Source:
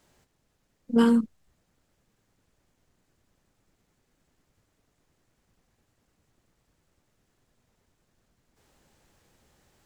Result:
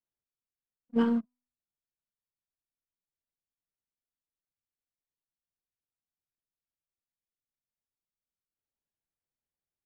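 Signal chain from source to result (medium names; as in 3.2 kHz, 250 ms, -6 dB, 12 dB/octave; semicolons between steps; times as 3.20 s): companding laws mixed up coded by A; low-pass 2.8 kHz; de-hum 247.7 Hz, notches 5; in parallel at -4.5 dB: overload inside the chain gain 26.5 dB; on the sum: upward expansion 2.5:1, over -33 dBFS; trim -5.5 dB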